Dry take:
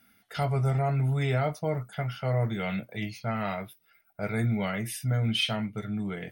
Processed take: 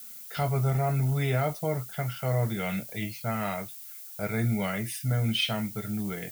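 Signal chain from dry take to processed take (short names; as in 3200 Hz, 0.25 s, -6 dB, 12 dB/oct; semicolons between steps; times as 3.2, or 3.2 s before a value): added noise violet -44 dBFS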